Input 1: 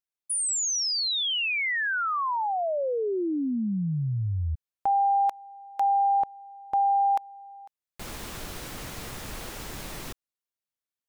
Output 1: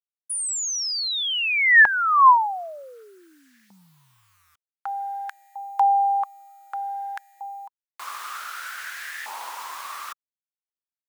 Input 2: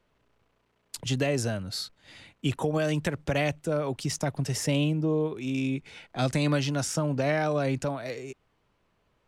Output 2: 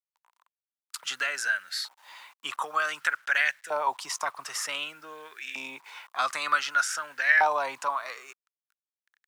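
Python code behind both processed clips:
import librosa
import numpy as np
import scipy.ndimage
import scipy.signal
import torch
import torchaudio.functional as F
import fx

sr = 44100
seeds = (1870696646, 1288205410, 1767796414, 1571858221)

y = fx.quant_dither(x, sr, seeds[0], bits=10, dither='none')
y = fx.filter_lfo_highpass(y, sr, shape='saw_up', hz=0.54, low_hz=870.0, high_hz=1800.0, q=7.5)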